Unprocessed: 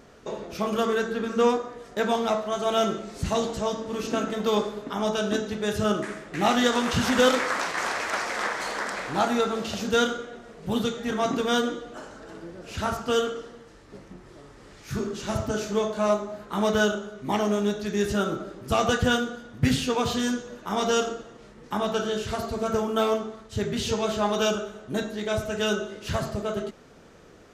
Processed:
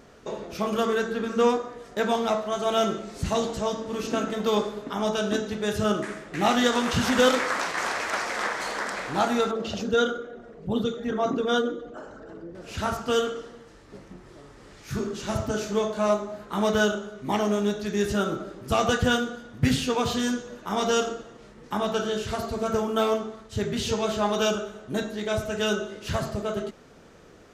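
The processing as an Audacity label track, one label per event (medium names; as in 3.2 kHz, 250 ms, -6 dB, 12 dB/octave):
9.510000	12.550000	resonances exaggerated exponent 1.5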